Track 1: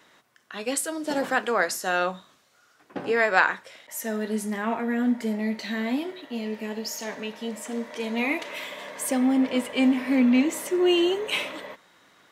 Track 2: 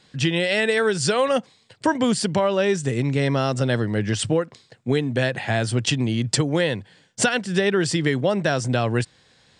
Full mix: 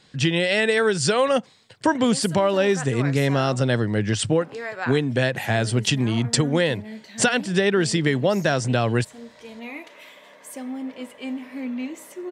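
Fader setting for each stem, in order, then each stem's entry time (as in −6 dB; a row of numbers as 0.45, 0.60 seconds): −10.0, +0.5 decibels; 1.45, 0.00 seconds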